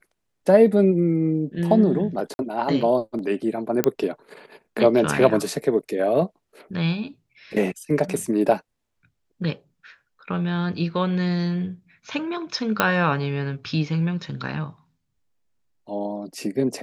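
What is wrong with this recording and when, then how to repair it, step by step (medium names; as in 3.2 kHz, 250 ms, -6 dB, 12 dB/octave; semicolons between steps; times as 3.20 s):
2.34–2.39 s: dropout 51 ms
3.84 s: pop -5 dBFS
12.80 s: pop -3 dBFS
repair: de-click; interpolate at 2.34 s, 51 ms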